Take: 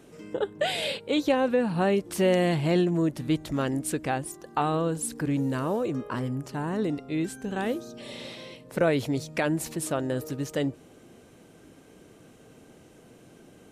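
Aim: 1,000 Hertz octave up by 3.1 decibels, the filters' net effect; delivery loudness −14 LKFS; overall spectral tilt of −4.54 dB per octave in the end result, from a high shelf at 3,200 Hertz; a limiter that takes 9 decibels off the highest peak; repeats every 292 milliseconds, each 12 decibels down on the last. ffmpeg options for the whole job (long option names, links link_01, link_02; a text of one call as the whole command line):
ffmpeg -i in.wav -af "equalizer=frequency=1000:width_type=o:gain=3.5,highshelf=frequency=3200:gain=7.5,alimiter=limit=-18dB:level=0:latency=1,aecho=1:1:292|584|876:0.251|0.0628|0.0157,volume=14.5dB" out.wav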